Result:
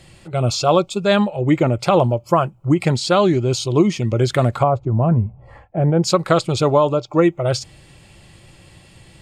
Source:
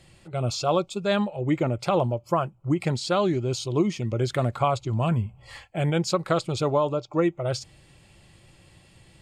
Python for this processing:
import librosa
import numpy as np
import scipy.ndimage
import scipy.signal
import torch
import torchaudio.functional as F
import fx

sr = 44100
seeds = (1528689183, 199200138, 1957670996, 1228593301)

y = fx.curve_eq(x, sr, hz=(660.0, 1600.0, 3800.0), db=(0, -10, -28), at=(4.63, 6.03))
y = F.gain(torch.from_numpy(y), 8.0).numpy()